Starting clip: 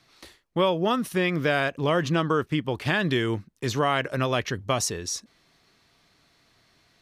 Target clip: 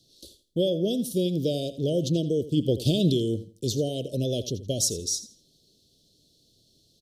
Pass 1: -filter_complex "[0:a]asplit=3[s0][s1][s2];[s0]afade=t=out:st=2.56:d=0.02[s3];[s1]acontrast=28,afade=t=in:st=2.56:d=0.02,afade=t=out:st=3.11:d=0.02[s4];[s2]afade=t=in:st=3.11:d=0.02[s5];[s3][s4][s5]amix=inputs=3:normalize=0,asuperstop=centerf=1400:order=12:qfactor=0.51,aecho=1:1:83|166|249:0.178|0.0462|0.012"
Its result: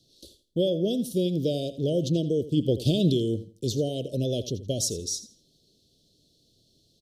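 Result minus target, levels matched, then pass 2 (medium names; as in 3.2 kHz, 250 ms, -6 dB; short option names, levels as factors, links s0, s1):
8 kHz band -2.5 dB
-filter_complex "[0:a]asplit=3[s0][s1][s2];[s0]afade=t=out:st=2.56:d=0.02[s3];[s1]acontrast=28,afade=t=in:st=2.56:d=0.02,afade=t=out:st=3.11:d=0.02[s4];[s2]afade=t=in:st=3.11:d=0.02[s5];[s3][s4][s5]amix=inputs=3:normalize=0,asuperstop=centerf=1400:order=12:qfactor=0.51,highshelf=f=4700:g=4.5,aecho=1:1:83|166|249:0.178|0.0462|0.012"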